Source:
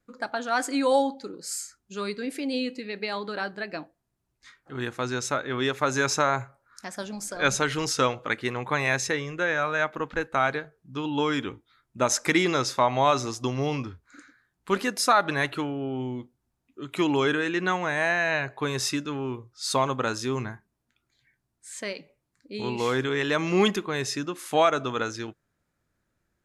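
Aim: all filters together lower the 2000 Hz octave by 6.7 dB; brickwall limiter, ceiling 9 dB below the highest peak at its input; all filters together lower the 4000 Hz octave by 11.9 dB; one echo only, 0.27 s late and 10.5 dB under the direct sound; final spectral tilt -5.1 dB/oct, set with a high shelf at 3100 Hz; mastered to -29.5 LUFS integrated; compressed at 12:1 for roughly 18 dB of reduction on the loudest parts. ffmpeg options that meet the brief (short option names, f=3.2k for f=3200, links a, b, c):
-af "equalizer=f=2k:t=o:g=-5,highshelf=f=3.1k:g=-7,equalizer=f=4k:t=o:g=-8.5,acompressor=threshold=-36dB:ratio=12,alimiter=level_in=8dB:limit=-24dB:level=0:latency=1,volume=-8dB,aecho=1:1:270:0.299,volume=13dB"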